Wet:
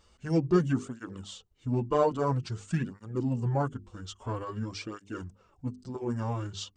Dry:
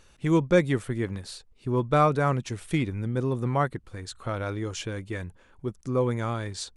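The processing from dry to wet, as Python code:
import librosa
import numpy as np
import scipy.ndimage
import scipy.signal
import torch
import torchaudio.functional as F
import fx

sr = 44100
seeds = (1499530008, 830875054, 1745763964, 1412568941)

y = fx.peak_eq(x, sr, hz=2500.0, db=-13.5, octaves=0.29)
y = fx.hum_notches(y, sr, base_hz=50, count=9)
y = fx.formant_shift(y, sr, semitones=-4)
y = fx.flanger_cancel(y, sr, hz=0.5, depth_ms=7.9)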